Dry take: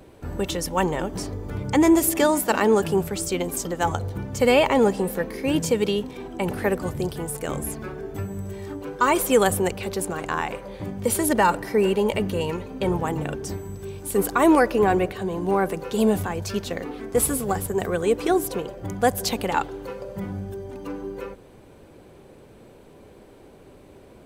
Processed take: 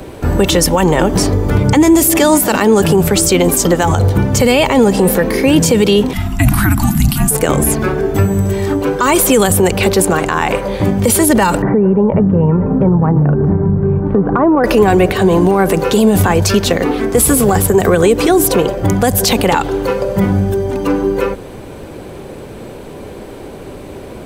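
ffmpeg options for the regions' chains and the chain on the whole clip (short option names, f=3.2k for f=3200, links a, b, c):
-filter_complex "[0:a]asettb=1/sr,asplit=3[a][b][c];[a]atrim=end=6.134[d];[b]atrim=start=6.13:end=7.31,asetpts=PTS-STARTPTS,afade=t=in:d=0.004:c=qsin,afade=t=out:st=1.176:d=0.004:c=qsin,asuperstop=centerf=790:order=12:qfactor=2.7,equalizer=f=13k:w=0.94:g=10,afreqshift=-300[e];[c]atrim=start=7.306[f];[d][e]acrossfade=d=0.004:c1=hsin:c2=qsin[g];[g][f]acrossfade=d=0.004:c1=qsin:c2=hsin,asettb=1/sr,asplit=3[h][i][j];[h]atrim=end=11.624[k];[i]atrim=start=11.62:end=14.64,asetpts=PTS-STARTPTS,afade=t=in:d=0.004:c=qsin,afade=t=out:st=3.016:d=0.004:c=qsin,lowpass=f=1.4k:w=0.5412,lowpass=f=1.4k:w=1.3066,equalizer=f=160:t=o:w=0.83:g=13.5,acompressor=threshold=-26dB:ratio=8:attack=3.2:release=140:knee=1:detection=peak[l];[j]atrim=start=14.636[m];[k][l]acrossfade=d=0.004:c1=hsin:c2=qsin[n];[n][m]acrossfade=d=0.004:c1=qsin:c2=hsin,acrossover=split=270|3000[o][p][q];[p]acompressor=threshold=-22dB:ratio=6[r];[o][r][q]amix=inputs=3:normalize=0,alimiter=level_in=19.5dB:limit=-1dB:release=50:level=0:latency=1,volume=-1dB"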